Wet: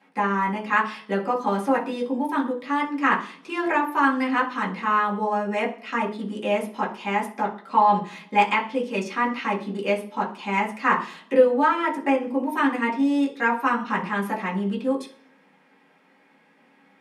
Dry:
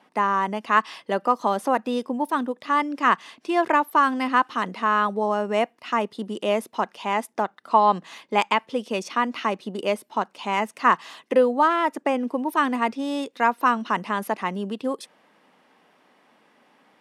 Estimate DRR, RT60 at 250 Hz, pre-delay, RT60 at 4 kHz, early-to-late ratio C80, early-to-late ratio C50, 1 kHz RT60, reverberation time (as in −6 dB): −4.5 dB, 0.75 s, 4 ms, 0.55 s, 17.0 dB, 12.0 dB, 0.40 s, 0.50 s